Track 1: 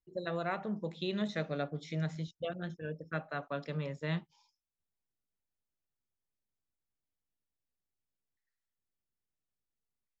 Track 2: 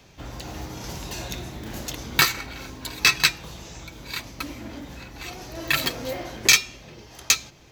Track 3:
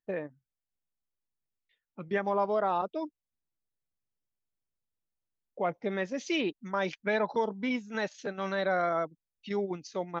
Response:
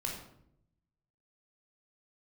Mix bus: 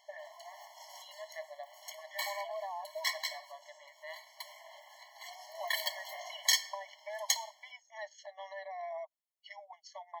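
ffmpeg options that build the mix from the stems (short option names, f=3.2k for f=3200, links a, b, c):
-filter_complex "[0:a]volume=-5.5dB,afade=t=in:st=0.79:d=0.38:silence=0.334965,asplit=3[a][b][c];[b]volume=-15dB[d];[1:a]bandreject=f=60:t=h:w=6,bandreject=f=120:t=h:w=6,bandreject=f=180:t=h:w=6,bandreject=f=240:t=h:w=6,bandreject=f=300:t=h:w=6,bandreject=f=360:t=h:w=6,volume=-9dB,asplit=2[e][f];[f]volume=-12dB[g];[2:a]acompressor=threshold=-33dB:ratio=12,volume=-2dB[h];[c]apad=whole_len=340277[i];[e][i]sidechaincompress=threshold=-54dB:ratio=16:attack=41:release=165[j];[3:a]atrim=start_sample=2205[k];[d][g]amix=inputs=2:normalize=0[l];[l][k]afir=irnorm=-1:irlink=0[m];[a][j][h][m]amix=inputs=4:normalize=0,equalizer=f=230:w=2:g=12,afftfilt=real='re*eq(mod(floor(b*sr/1024/570),2),1)':imag='im*eq(mod(floor(b*sr/1024/570),2),1)':win_size=1024:overlap=0.75"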